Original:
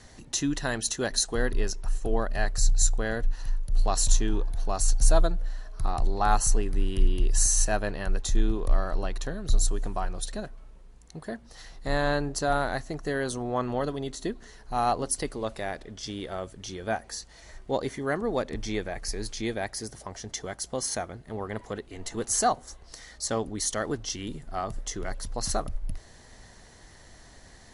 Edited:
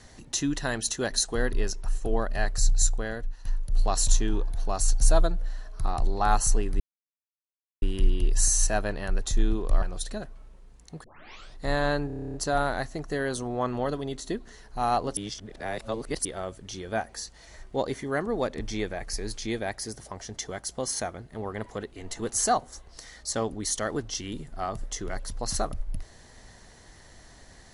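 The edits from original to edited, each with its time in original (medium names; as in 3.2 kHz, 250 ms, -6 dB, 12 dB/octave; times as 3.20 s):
2.81–3.45 s: fade out, to -12 dB
6.80 s: insert silence 1.02 s
8.80–10.04 s: delete
11.26 s: tape start 0.53 s
12.29 s: stutter 0.03 s, 10 plays
15.12–16.20 s: reverse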